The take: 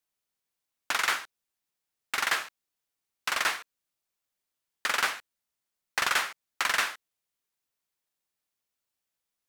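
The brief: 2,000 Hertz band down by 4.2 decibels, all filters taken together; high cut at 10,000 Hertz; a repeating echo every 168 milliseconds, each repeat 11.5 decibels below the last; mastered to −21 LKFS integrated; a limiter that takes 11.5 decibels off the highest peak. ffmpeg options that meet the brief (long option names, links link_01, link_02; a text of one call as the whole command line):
ffmpeg -i in.wav -af "lowpass=10000,equalizer=frequency=2000:width_type=o:gain=-5.5,alimiter=level_in=1.5dB:limit=-24dB:level=0:latency=1,volume=-1.5dB,aecho=1:1:168|336|504:0.266|0.0718|0.0194,volume=17.5dB" out.wav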